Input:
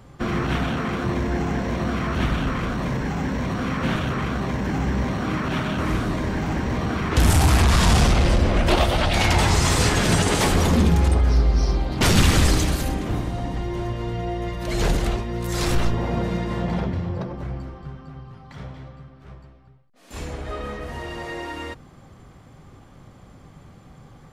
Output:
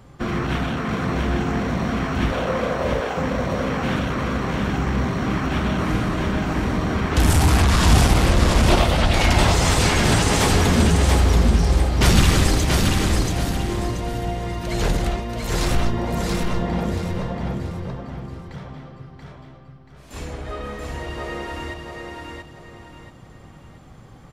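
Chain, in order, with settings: 2.32–3.17 resonant high-pass 520 Hz, resonance Q 4.9; feedback echo 0.682 s, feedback 33%, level -3.5 dB

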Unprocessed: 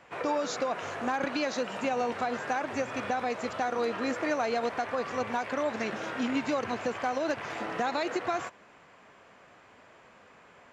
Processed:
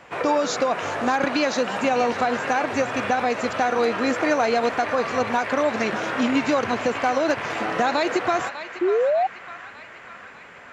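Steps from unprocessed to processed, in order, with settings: narrowing echo 0.599 s, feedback 72%, band-pass 1900 Hz, level -8.5 dB; painted sound rise, 8.81–9.27, 340–790 Hz -28 dBFS; gain +8.5 dB

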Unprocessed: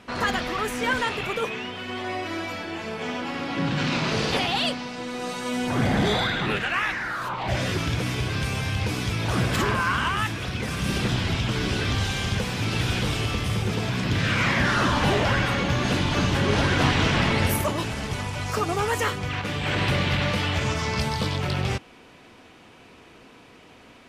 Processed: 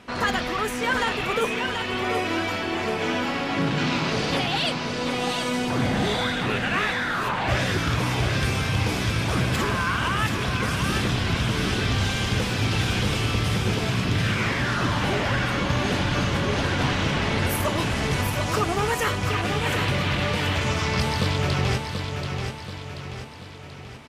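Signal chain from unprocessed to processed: vocal rider within 4 dB 0.5 s; on a send: feedback echo 0.733 s, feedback 49%, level -6 dB

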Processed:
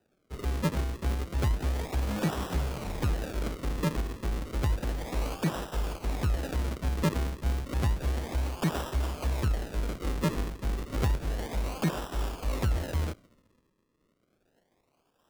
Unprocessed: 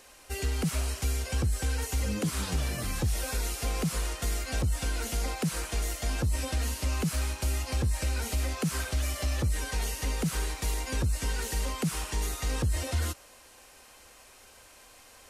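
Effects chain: self-modulated delay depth 0.74 ms; dynamic EQ 4600 Hz, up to +3 dB, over -50 dBFS, Q 0.94; decimation with a swept rate 40×, swing 100% 0.31 Hz; three-band expander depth 70%

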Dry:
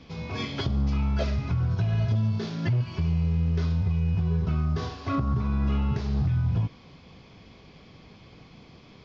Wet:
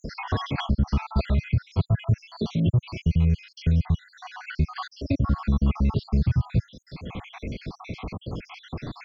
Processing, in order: random spectral dropouts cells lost 71%; three-band squash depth 70%; gain +6 dB

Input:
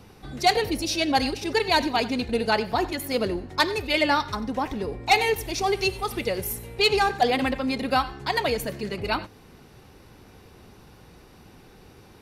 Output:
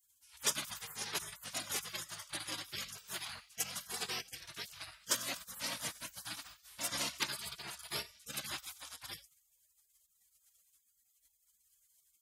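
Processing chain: HPF 350 Hz 12 dB/oct; notches 60/120/180/240/300/360/420/480 Hz; spectral gate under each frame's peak -30 dB weak; gain +4.5 dB

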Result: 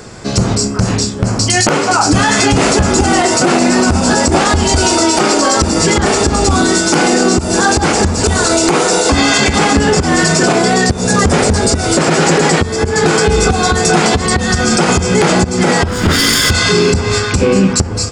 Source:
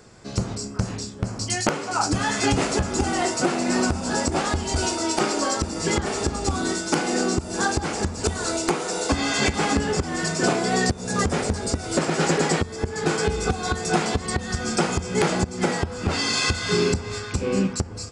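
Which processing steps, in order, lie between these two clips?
15.88–16.51 minimum comb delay 0.6 ms; maximiser +18 dB; gain -1 dB

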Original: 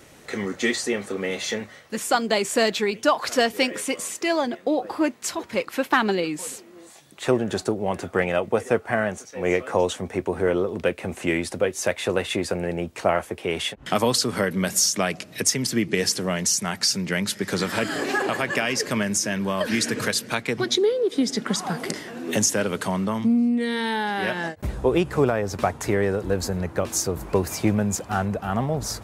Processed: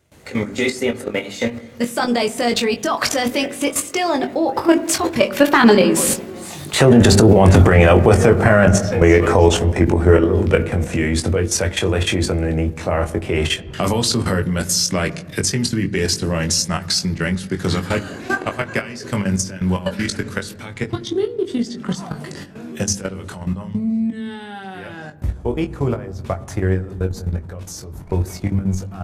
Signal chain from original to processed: Doppler pass-by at 7.4, 23 m/s, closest 17 m; notches 50/100/150/200/250/300/350/400/450 Hz; gate with hold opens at -60 dBFS; bell 77 Hz +13.5 dB 2.1 oct; level quantiser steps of 15 dB; doubler 21 ms -7 dB; on a send at -13 dB: tape spacing loss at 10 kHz 28 dB + reverb RT60 1.2 s, pre-delay 8 ms; on the sum: maximiser +27.5 dB; gain -1 dB

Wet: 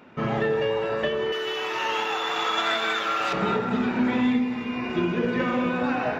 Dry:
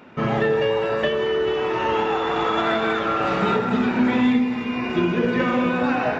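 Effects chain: 1.32–3.33 tilt +4.5 dB/oct; gain -4 dB

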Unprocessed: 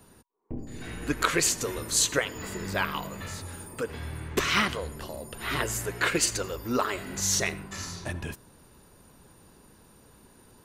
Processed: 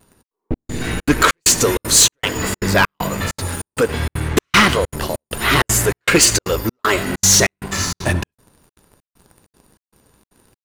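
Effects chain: sample leveller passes 3; step gate "xxx.xxx..x" 195 bpm -60 dB; vibrato 0.39 Hz 9.4 cents; gain +5 dB

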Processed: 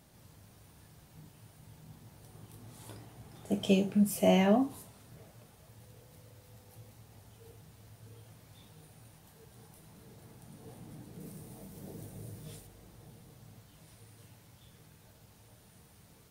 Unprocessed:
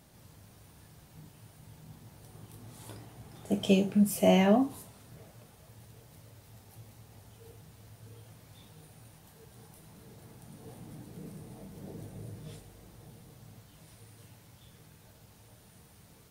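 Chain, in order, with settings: 5.8–6.89 whine 500 Hz -63 dBFS; 11.2–12.67 high shelf 6800 Hz +8.5 dB; gain -2 dB

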